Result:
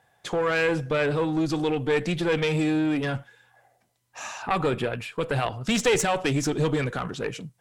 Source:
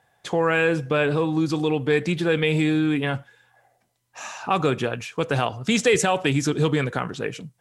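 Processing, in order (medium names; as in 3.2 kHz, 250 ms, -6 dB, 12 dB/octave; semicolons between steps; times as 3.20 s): single-diode clipper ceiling -20.5 dBFS; 4.42–5.61 s: peaking EQ 6.1 kHz -13.5 dB 0.33 oct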